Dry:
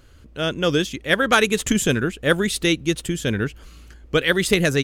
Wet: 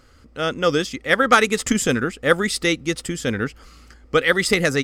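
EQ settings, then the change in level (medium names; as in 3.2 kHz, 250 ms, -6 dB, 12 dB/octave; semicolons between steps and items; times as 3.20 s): graphic EQ with 31 bands 250 Hz +7 dB, 500 Hz +7 dB, 800 Hz +7 dB, 1.25 kHz +11 dB, 2 kHz +8 dB, 5 kHz +11 dB, 8 kHz +6 dB; -4.0 dB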